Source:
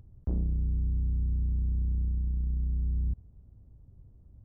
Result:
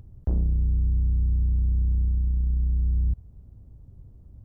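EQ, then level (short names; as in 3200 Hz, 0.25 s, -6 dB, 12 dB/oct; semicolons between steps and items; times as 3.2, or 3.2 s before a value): dynamic EQ 250 Hz, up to -5 dB, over -49 dBFS, Q 0.84; +6.5 dB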